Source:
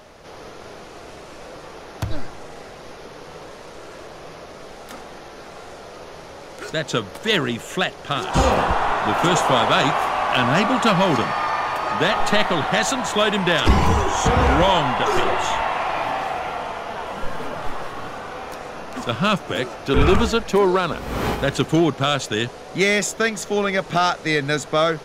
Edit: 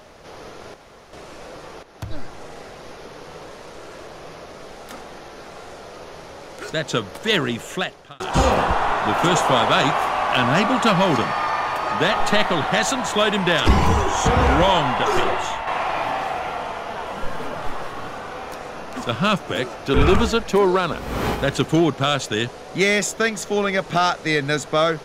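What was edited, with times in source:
0:00.74–0:01.13: fill with room tone
0:01.83–0:02.43: fade in, from −12.5 dB
0:07.66–0:08.20: fade out
0:15.23–0:15.67: fade out, to −7.5 dB

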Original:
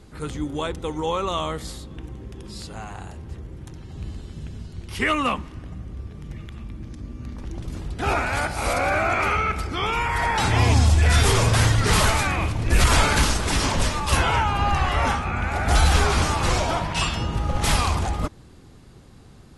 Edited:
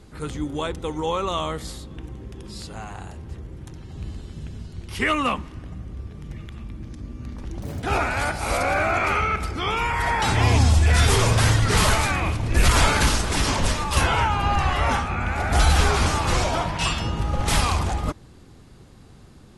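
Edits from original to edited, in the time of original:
0:07.62–0:07.98: play speed 178%

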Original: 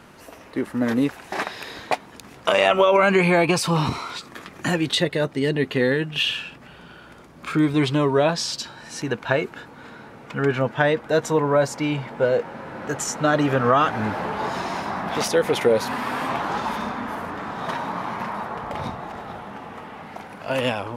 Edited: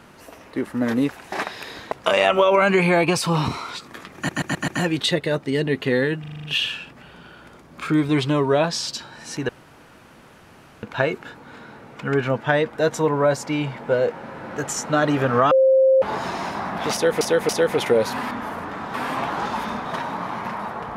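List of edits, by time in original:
0:01.92–0:02.33: remove
0:04.57: stutter 0.13 s, 5 plays
0:06.09: stutter 0.04 s, 7 plays
0:09.14: splice in room tone 1.34 s
0:13.82–0:14.33: beep over 529 Hz −11.5 dBFS
0:15.24–0:15.52: repeat, 3 plays
0:16.97–0:17.60: move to 0:16.06

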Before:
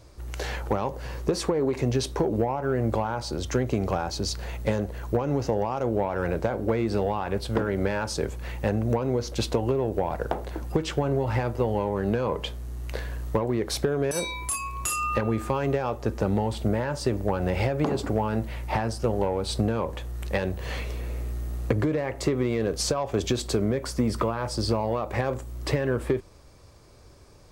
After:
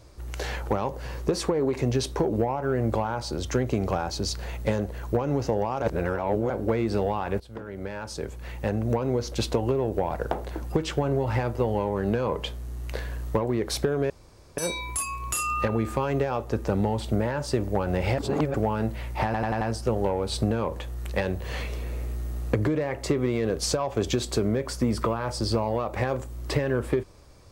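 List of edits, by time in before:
0:05.82–0:06.50: reverse
0:07.40–0:09.04: fade in, from −18 dB
0:14.10: splice in room tone 0.47 s
0:17.71–0:18.07: reverse
0:18.78: stutter 0.09 s, 5 plays

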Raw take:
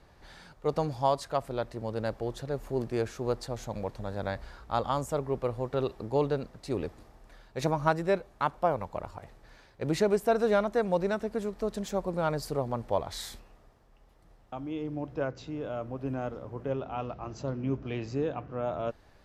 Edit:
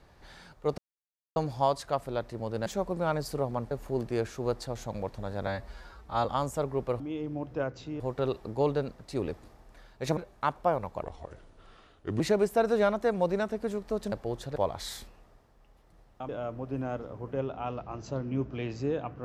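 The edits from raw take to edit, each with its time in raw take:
0:00.78: splice in silence 0.58 s
0:02.08–0:02.52: swap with 0:11.83–0:12.88
0:04.28–0:04.80: time-stretch 1.5×
0:07.72–0:08.15: remove
0:09.01–0:09.91: play speed 77%
0:14.61–0:15.61: move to 0:05.55

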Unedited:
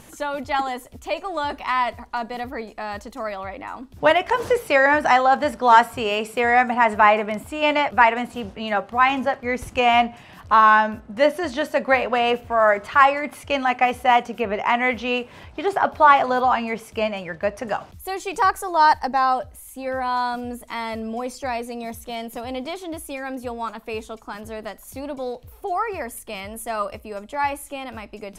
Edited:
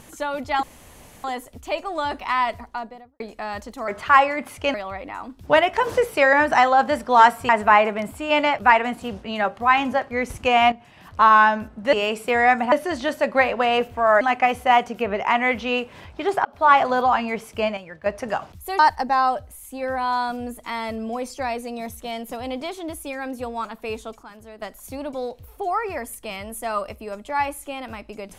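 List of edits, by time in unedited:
0:00.63: splice in room tone 0.61 s
0:01.95–0:02.59: fade out and dull
0:06.02–0:06.81: move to 0:11.25
0:10.04–0:10.52: fade in, from −12 dB
0:12.74–0:13.60: move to 0:03.27
0:15.84–0:16.14: fade in
0:17.16–0:17.45: clip gain −8 dB
0:18.18–0:18.83: remove
0:24.27–0:24.66: clip gain −9 dB

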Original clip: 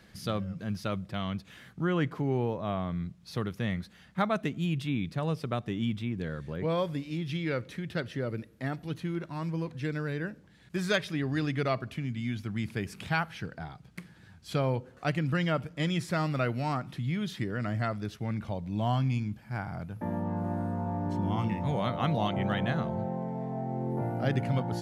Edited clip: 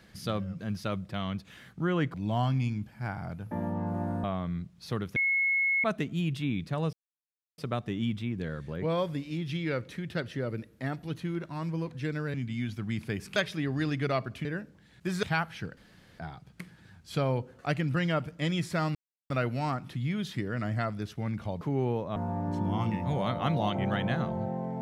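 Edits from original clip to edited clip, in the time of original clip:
0:02.14–0:02.69: swap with 0:18.64–0:20.74
0:03.61–0:04.29: beep over 2,180 Hz −23.5 dBFS
0:05.38: splice in silence 0.65 s
0:10.14–0:10.92: swap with 0:12.01–0:13.03
0:13.57: splice in room tone 0.42 s
0:16.33: splice in silence 0.35 s

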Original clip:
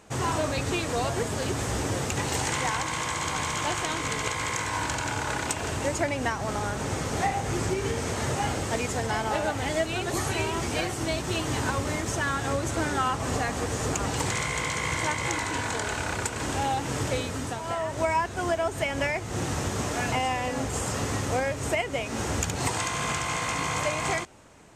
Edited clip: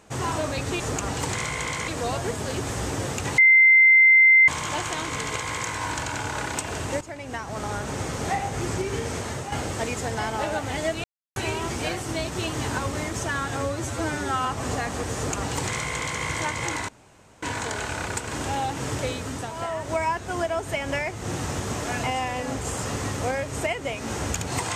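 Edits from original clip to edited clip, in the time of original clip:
0:02.30–0:03.40: beep over 2,080 Hz −11 dBFS
0:05.93–0:06.65: fade in, from −15.5 dB
0:08.06–0:08.44: fade out, to −7.5 dB
0:09.96–0:10.28: silence
0:12.49–0:13.08: time-stretch 1.5×
0:13.77–0:14.85: duplicate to 0:00.80
0:15.51: splice in room tone 0.54 s

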